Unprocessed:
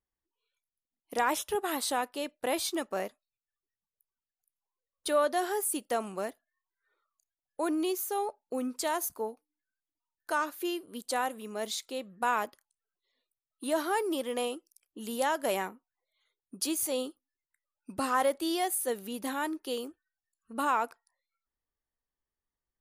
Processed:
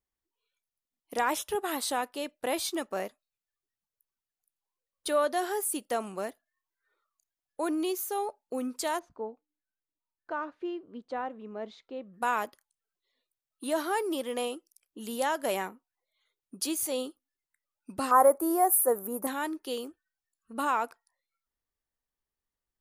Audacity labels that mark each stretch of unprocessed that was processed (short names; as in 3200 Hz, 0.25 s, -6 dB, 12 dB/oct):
8.990000	12.140000	tape spacing loss at 10 kHz 43 dB
18.110000	19.270000	EQ curve 220 Hz 0 dB, 530 Hz +7 dB, 1200 Hz +8 dB, 2300 Hz -11 dB, 3200 Hz -25 dB, 12000 Hz +11 dB